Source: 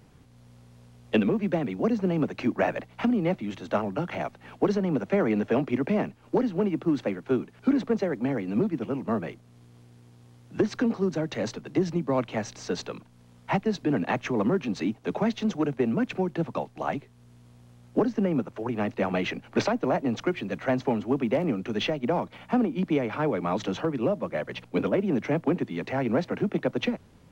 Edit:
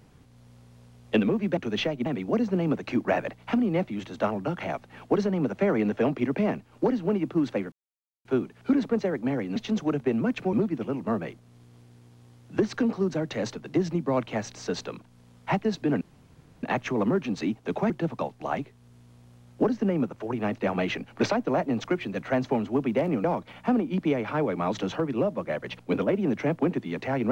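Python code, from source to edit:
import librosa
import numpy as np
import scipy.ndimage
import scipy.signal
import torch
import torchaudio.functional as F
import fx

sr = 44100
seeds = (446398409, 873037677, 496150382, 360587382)

y = fx.edit(x, sr, fx.insert_silence(at_s=7.23, length_s=0.53),
    fx.insert_room_tone(at_s=14.02, length_s=0.62),
    fx.move(start_s=15.29, length_s=0.97, to_s=8.54),
    fx.move(start_s=21.6, length_s=0.49, to_s=1.57), tone=tone)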